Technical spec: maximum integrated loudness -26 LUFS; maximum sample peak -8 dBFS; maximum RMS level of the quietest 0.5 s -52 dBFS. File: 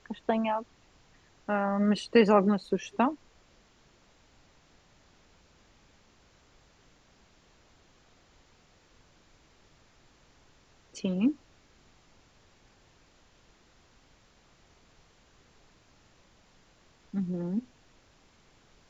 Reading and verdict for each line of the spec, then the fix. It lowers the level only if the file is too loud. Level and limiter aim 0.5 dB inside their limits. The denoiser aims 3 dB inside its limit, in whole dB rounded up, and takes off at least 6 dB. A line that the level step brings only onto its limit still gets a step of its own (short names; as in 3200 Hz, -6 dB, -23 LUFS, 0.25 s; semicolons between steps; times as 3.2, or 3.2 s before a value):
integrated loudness -28.5 LUFS: OK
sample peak -9.5 dBFS: OK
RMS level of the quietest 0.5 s -62 dBFS: OK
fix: none